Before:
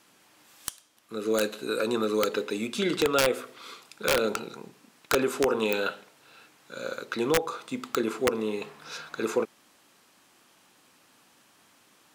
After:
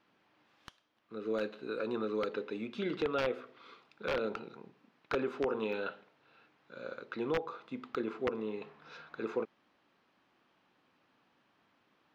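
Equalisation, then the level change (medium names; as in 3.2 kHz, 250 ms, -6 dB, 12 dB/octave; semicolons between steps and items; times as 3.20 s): distance through air 280 m; -7.5 dB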